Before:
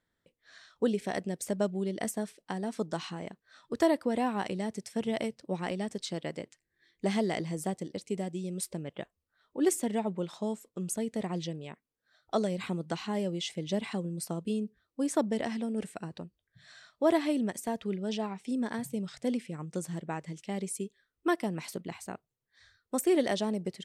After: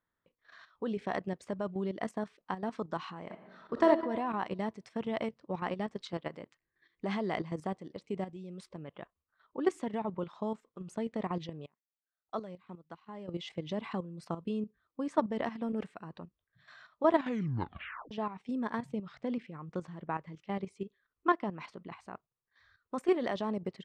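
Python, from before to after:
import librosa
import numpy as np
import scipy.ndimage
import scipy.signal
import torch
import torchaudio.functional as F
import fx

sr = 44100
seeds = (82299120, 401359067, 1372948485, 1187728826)

y = fx.reverb_throw(x, sr, start_s=3.24, length_s=0.64, rt60_s=1.2, drr_db=2.0)
y = fx.upward_expand(y, sr, threshold_db=-42.0, expansion=2.5, at=(11.66, 13.28))
y = fx.air_absorb(y, sr, metres=67.0, at=(18.92, 21.94), fade=0.02)
y = fx.edit(y, sr, fx.tape_stop(start_s=17.13, length_s=0.98), tone=tone)
y = scipy.signal.sosfilt(scipy.signal.butter(2, 3400.0, 'lowpass', fs=sr, output='sos'), y)
y = fx.peak_eq(y, sr, hz=1100.0, db=10.0, octaves=0.71)
y = fx.level_steps(y, sr, step_db=11)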